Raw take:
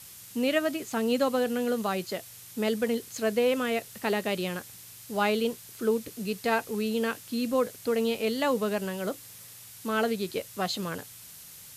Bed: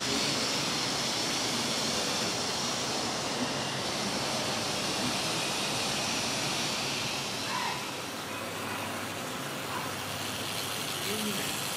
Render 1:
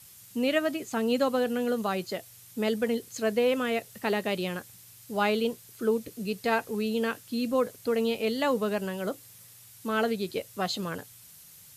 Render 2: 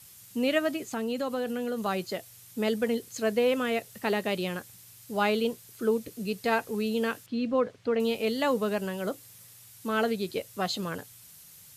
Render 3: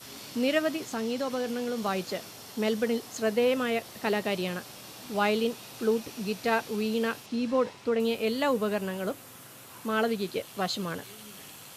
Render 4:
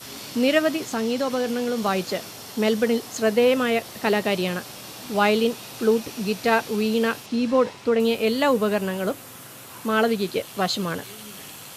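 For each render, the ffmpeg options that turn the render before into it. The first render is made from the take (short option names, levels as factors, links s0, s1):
-af "afftdn=nr=6:nf=-48"
-filter_complex "[0:a]asettb=1/sr,asplit=3[s0][s1][s2];[s0]atrim=end=0.794[s3];[s1]atrim=start=0.79:end=1.86,asetpts=PTS-STARTPTS,afade=t=in:d=0.004:c=qsin,afade=t=out:st=1.066:d=0.004:c=qsin,acompressor=threshold=0.0355:ratio=2.5:attack=3.2:release=140:knee=1:detection=peak[s4];[s2]atrim=start=1.856[s5];[s3][s4]acrossfade=d=0.004:c1=hsin:c2=qsin[s6];[s6][s5]acrossfade=d=0.004:c1=qsin:c2=hsin,asettb=1/sr,asplit=3[s7][s8][s9];[s7]atrim=end=7.264[s10];[s8]atrim=start=7.26:end=8,asetpts=PTS-STARTPTS,afade=t=in:d=0.004:c=qsin,afade=t=out:st=0.736:d=0.004:c=qsin,lowpass=3200[s11];[s9]atrim=start=7.996[s12];[s10][s11]acrossfade=d=0.004:c1=hsin:c2=qsin[s13];[s13][s12]acrossfade=d=0.004:c1=qsin:c2=hsin"
-filter_complex "[1:a]volume=0.168[s0];[0:a][s0]amix=inputs=2:normalize=0"
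-af "volume=2.11"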